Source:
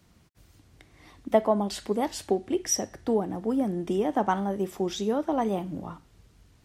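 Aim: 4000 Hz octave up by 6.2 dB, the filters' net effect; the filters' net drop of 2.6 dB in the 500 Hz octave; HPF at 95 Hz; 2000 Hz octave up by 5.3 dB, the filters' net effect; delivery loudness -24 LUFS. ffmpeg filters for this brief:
-af "highpass=95,equalizer=f=500:t=o:g=-4,equalizer=f=2k:t=o:g=5.5,equalizer=f=4k:t=o:g=7.5,volume=4dB"

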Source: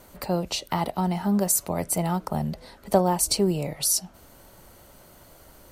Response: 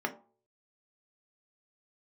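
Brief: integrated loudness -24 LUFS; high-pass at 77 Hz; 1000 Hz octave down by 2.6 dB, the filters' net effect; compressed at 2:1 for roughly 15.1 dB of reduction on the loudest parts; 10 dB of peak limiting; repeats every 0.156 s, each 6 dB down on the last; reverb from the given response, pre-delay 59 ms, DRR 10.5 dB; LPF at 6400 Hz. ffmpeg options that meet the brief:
-filter_complex "[0:a]highpass=77,lowpass=6.4k,equalizer=f=1k:t=o:g=-3.5,acompressor=threshold=-43dB:ratio=2,alimiter=level_in=6.5dB:limit=-24dB:level=0:latency=1,volume=-6.5dB,aecho=1:1:156|312|468|624|780|936:0.501|0.251|0.125|0.0626|0.0313|0.0157,asplit=2[a][b];[1:a]atrim=start_sample=2205,adelay=59[c];[b][c]afir=irnorm=-1:irlink=0,volume=-17dB[d];[a][d]amix=inputs=2:normalize=0,volume=16dB"

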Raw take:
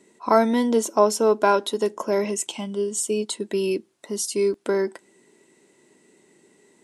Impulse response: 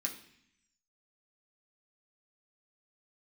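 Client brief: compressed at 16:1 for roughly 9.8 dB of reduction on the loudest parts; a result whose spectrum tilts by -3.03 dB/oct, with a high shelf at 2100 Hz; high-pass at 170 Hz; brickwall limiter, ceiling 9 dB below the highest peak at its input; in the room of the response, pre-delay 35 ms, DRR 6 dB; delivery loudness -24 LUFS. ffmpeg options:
-filter_complex "[0:a]highpass=170,highshelf=f=2.1k:g=6.5,acompressor=threshold=-21dB:ratio=16,alimiter=limit=-19.5dB:level=0:latency=1,asplit=2[a][b];[1:a]atrim=start_sample=2205,adelay=35[c];[b][c]afir=irnorm=-1:irlink=0,volume=-6.5dB[d];[a][d]amix=inputs=2:normalize=0,volume=4dB"

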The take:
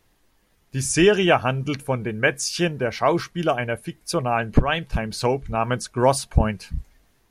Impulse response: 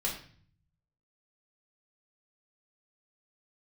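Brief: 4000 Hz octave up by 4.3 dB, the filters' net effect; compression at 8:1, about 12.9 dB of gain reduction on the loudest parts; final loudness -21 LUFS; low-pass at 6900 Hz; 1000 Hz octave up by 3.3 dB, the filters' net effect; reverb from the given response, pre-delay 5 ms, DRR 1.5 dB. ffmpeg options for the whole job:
-filter_complex "[0:a]lowpass=6.9k,equalizer=f=1k:t=o:g=4,equalizer=f=4k:t=o:g=6.5,acompressor=threshold=-23dB:ratio=8,asplit=2[a][b];[1:a]atrim=start_sample=2205,adelay=5[c];[b][c]afir=irnorm=-1:irlink=0,volume=-6dB[d];[a][d]amix=inputs=2:normalize=0,volume=5dB"

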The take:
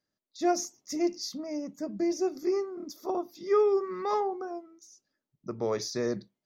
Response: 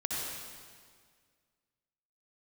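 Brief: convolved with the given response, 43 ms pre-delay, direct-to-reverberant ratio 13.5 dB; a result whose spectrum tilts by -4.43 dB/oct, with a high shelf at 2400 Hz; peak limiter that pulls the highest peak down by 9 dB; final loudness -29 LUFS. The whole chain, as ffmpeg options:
-filter_complex "[0:a]highshelf=f=2.4k:g=-3.5,alimiter=level_in=1dB:limit=-24dB:level=0:latency=1,volume=-1dB,asplit=2[a][b];[1:a]atrim=start_sample=2205,adelay=43[c];[b][c]afir=irnorm=-1:irlink=0,volume=-19dB[d];[a][d]amix=inputs=2:normalize=0,volume=5.5dB"

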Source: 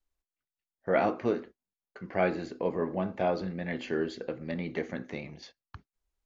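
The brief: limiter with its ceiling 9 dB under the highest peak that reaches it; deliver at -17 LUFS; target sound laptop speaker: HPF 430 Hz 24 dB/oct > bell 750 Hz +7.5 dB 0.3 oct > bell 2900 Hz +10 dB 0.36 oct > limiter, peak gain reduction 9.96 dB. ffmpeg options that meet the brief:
-af "alimiter=limit=-20.5dB:level=0:latency=1,highpass=f=430:w=0.5412,highpass=f=430:w=1.3066,equalizer=f=750:t=o:w=0.3:g=7.5,equalizer=f=2.9k:t=o:w=0.36:g=10,volume=22dB,alimiter=limit=-5dB:level=0:latency=1"

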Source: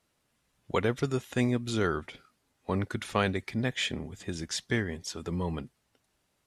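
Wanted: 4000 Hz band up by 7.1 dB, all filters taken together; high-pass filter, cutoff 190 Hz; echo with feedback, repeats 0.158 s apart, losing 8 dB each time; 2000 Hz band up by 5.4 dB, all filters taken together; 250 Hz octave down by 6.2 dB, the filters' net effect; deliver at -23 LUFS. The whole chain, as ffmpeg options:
-af "highpass=190,equalizer=f=250:t=o:g=-6,equalizer=f=2k:t=o:g=5,equalizer=f=4k:t=o:g=7.5,aecho=1:1:158|316|474|632|790:0.398|0.159|0.0637|0.0255|0.0102,volume=7dB"

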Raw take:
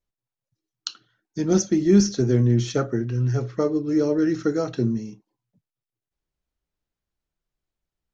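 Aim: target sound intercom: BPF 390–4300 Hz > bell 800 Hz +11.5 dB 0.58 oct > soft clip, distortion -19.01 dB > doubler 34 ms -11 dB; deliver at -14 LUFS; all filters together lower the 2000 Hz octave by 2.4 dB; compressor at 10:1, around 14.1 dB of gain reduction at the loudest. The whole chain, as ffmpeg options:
-filter_complex "[0:a]equalizer=f=2k:t=o:g=-4.5,acompressor=threshold=-25dB:ratio=10,highpass=390,lowpass=4.3k,equalizer=f=800:t=o:w=0.58:g=11.5,asoftclip=threshold=-22.5dB,asplit=2[a][b];[b]adelay=34,volume=-11dB[c];[a][c]amix=inputs=2:normalize=0,volume=22dB"

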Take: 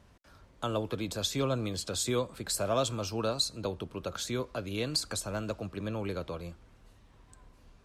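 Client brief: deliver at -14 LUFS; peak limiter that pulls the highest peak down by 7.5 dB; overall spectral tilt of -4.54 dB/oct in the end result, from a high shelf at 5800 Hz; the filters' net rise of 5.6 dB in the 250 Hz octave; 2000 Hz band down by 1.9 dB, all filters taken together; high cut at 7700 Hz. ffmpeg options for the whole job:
-af "lowpass=7.7k,equalizer=f=250:t=o:g=7,equalizer=f=2k:t=o:g=-3.5,highshelf=f=5.8k:g=5,volume=19dB,alimiter=limit=-3dB:level=0:latency=1"

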